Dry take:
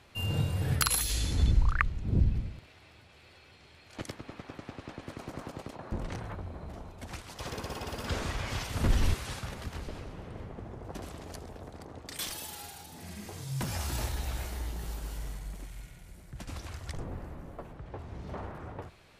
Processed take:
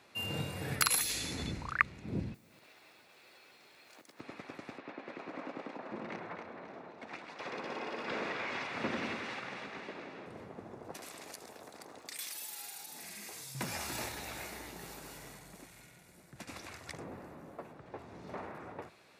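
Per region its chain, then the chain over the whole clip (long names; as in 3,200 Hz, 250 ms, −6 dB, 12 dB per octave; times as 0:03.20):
0:02.34–0:04.20: high-pass filter 280 Hz 6 dB per octave + downward compressor 12 to 1, threshold −51 dBFS + noise that follows the level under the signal 14 dB
0:04.78–0:10.26: band-pass filter 200–3,200 Hz + echo with a time of its own for lows and highs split 1,300 Hz, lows 99 ms, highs 265 ms, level −5.5 dB
0:10.94–0:13.55: spectral tilt +2.5 dB per octave + downward compressor 2.5 to 1, threshold −42 dBFS
whole clip: high-pass filter 200 Hz 12 dB per octave; notch filter 3,100 Hz, Q 11; dynamic equaliser 2,200 Hz, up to +5 dB, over −59 dBFS, Q 2.3; level −1.5 dB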